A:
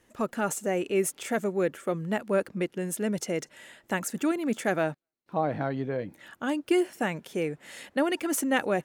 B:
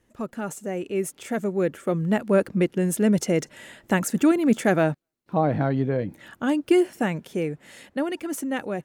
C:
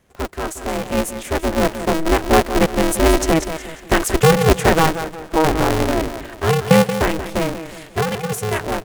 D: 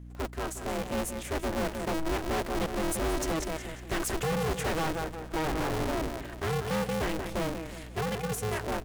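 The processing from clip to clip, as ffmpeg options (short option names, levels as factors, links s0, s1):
-af "lowshelf=f=310:g=8.5,dynaudnorm=f=270:g=13:m=3.76,volume=0.531"
-af "aecho=1:1:179|358|537|716:0.282|0.121|0.0521|0.0224,aeval=exprs='val(0)*sgn(sin(2*PI*160*n/s))':c=same,volume=2"
-af "volume=8.91,asoftclip=hard,volume=0.112,aeval=exprs='val(0)+0.0178*(sin(2*PI*60*n/s)+sin(2*PI*2*60*n/s)/2+sin(2*PI*3*60*n/s)/3+sin(2*PI*4*60*n/s)/4+sin(2*PI*5*60*n/s)/5)':c=same,volume=0.376"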